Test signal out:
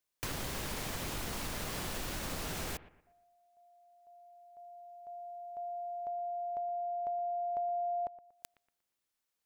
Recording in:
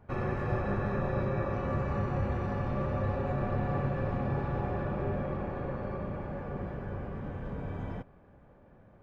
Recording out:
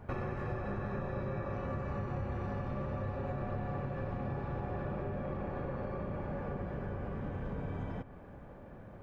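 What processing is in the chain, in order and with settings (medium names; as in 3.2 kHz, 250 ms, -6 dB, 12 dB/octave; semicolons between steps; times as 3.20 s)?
compression 5:1, threshold -43 dBFS; bucket-brigade echo 118 ms, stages 2048, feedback 35%, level -16.5 dB; trim +7 dB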